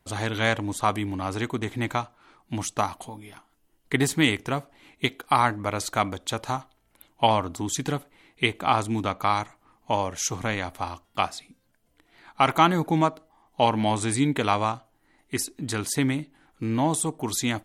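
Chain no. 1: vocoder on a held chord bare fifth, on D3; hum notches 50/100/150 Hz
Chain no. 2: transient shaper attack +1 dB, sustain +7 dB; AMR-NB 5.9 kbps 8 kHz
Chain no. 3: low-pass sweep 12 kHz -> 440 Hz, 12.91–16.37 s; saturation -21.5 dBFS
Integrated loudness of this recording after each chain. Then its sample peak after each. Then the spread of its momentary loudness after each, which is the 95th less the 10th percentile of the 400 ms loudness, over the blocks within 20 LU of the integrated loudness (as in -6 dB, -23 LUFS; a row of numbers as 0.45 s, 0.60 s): -28.5 LUFS, -26.5 LUFS, -30.0 LUFS; -8.5 dBFS, -4.0 dBFS, -21.5 dBFS; 13 LU, 12 LU, 10 LU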